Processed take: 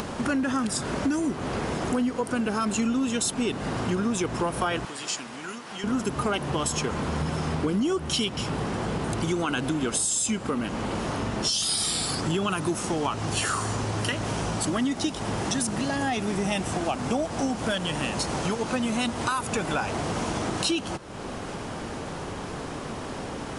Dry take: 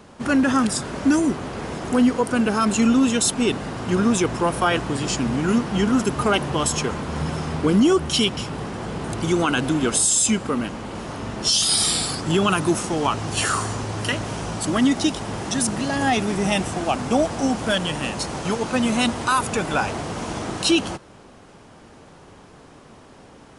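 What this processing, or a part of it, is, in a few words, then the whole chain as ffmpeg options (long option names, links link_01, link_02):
upward and downward compression: -filter_complex "[0:a]acompressor=mode=upward:threshold=-22dB:ratio=2.5,acompressor=threshold=-24dB:ratio=4,asettb=1/sr,asplit=3[link_01][link_02][link_03];[link_01]atrim=end=4.854[link_04];[link_02]atrim=start=4.85:end=5.84,asetpts=PTS-STARTPTS,afade=type=in:duration=0.004:curve=qsin,afade=type=out:start_time=0.986:duration=0.004:curve=qsin,highpass=frequency=1300:poles=1[link_05];[link_03]atrim=start=5.836[link_06];[link_04][link_05]acrossfade=duration=0.004:curve1=hsin:curve2=qsin[link_07];[link_07][link_06]acrossfade=duration=0.004:curve1=qsin:curve2=hsin"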